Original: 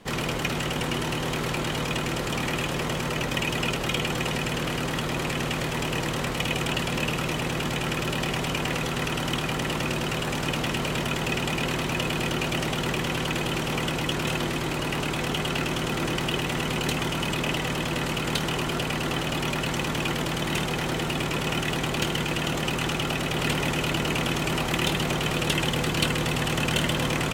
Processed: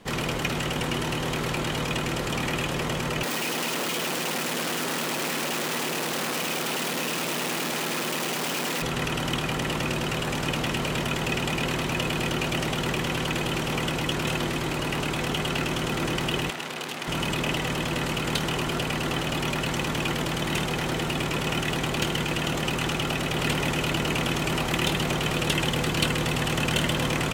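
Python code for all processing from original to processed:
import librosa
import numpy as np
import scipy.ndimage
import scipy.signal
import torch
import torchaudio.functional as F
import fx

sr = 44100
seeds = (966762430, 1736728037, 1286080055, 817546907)

y = fx.chain(x, sr, fx.clip_1bit(),
    fx.highpass(hz=190.0, slope=24), at=(3.23, 8.82))
y = fx.chain(y, sr, fx.highpass(hz=220.0, slope=12),
    fx.transformer_sat(knee_hz=4000.0), at=(16.5, 17.08))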